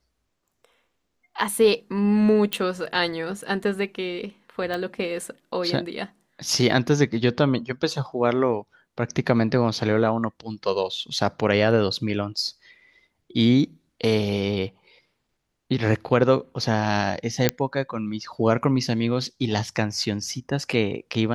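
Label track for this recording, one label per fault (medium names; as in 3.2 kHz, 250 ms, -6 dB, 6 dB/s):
2.530000	2.530000	pop -9 dBFS
4.740000	4.740000	pop
17.490000	17.490000	pop -3 dBFS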